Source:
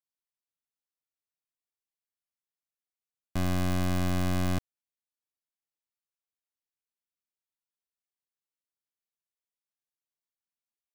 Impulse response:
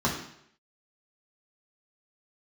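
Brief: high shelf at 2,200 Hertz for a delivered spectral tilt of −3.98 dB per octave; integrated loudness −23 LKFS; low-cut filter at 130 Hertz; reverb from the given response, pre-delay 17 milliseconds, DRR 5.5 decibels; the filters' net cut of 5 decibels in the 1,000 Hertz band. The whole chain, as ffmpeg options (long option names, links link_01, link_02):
-filter_complex "[0:a]highpass=130,equalizer=frequency=1000:width_type=o:gain=-9,highshelf=frequency=2200:gain=8.5,asplit=2[link_01][link_02];[1:a]atrim=start_sample=2205,adelay=17[link_03];[link_02][link_03]afir=irnorm=-1:irlink=0,volume=-17.5dB[link_04];[link_01][link_04]amix=inputs=2:normalize=0,volume=7.5dB"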